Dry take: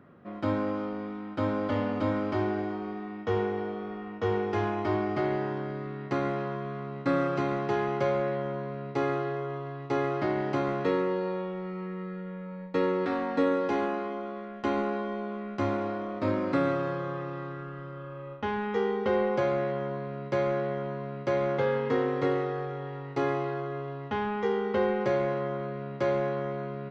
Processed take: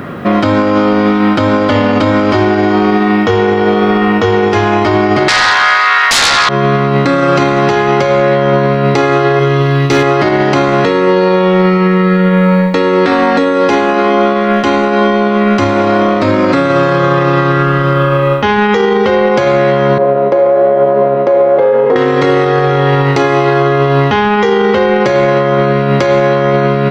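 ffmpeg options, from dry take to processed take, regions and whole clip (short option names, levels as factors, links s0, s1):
-filter_complex "[0:a]asettb=1/sr,asplit=3[s0][s1][s2];[s0]atrim=end=5.284[s3];[s1]atrim=start=5.28:end=6.49,asetpts=PTS-STARTPTS,afade=t=in:d=0.004:c=qsin,afade=t=out:st=1.206:d=0.004:c=qsin,highpass=f=1100:w=0.5412,highpass=f=1100:w=1.3066,highshelf=f=3500:g=-7,aeval=exprs='0.0891*sin(PI/2*10*val(0)/0.0891)':c=same[s4];[s2]atrim=start=6.486[s5];[s3][s4]acrossfade=d=0.004:c1=hsin:c2=qsin[s6];[s6][s5]acrossfade=d=0.004:c1=qsin:c2=hsin,asettb=1/sr,asplit=3[s7][s8][s9];[s7]atrim=end=9.394[s10];[s8]atrim=start=9.39:end=10.03,asetpts=PTS-STARTPTS,afade=t=in:d=0.004:c=qsin,afade=t=out:st=0.636:d=0.004:c=qsin,equalizer=f=810:w=0.78:g=-9.5,asoftclip=type=hard:threshold=0.0447[s11];[s9]atrim=start=10.026[s12];[s10][s11]acrossfade=d=0.004:c1=hsin:c2=qsin[s13];[s13][s12]acrossfade=d=0.004:c1=qsin:c2=hsin,asettb=1/sr,asplit=3[s14][s15][s16];[s14]atrim=end=19.984[s17];[s15]atrim=start=19.98:end=21.96,asetpts=PTS-STARTPTS,afade=t=in:d=0.004:c=qsin,afade=t=out:st=1.976:d=0.004:c=qsin,acontrast=62,flanger=delay=4.6:depth=9:regen=74:speed=1:shape=triangular,bandpass=f=570:t=q:w=1.9[s18];[s16]atrim=start=21.956[s19];[s17][s18]acrossfade=d=0.004:c1=hsin:c2=qsin[s20];[s20][s19]acrossfade=d=0.004:c1=qsin:c2=hsin,highshelf=f=2300:g=9.5,acompressor=threshold=0.0224:ratio=6,alimiter=level_in=39.8:limit=0.891:release=50:level=0:latency=1,volume=0.891"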